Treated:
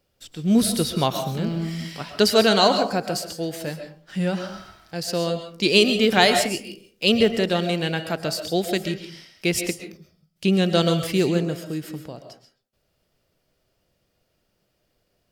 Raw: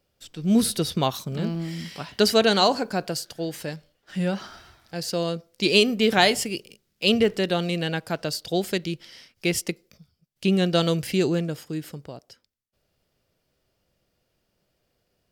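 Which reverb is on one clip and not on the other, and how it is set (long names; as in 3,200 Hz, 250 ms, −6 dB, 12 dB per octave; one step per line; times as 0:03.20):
comb and all-pass reverb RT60 0.43 s, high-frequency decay 0.5×, pre-delay 90 ms, DRR 7 dB
level +1.5 dB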